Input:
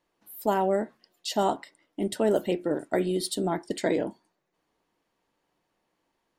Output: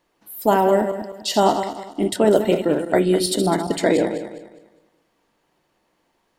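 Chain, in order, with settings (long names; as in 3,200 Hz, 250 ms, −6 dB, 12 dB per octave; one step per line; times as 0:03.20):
feedback delay that plays each chunk backwards 102 ms, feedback 56%, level −8 dB
level +8 dB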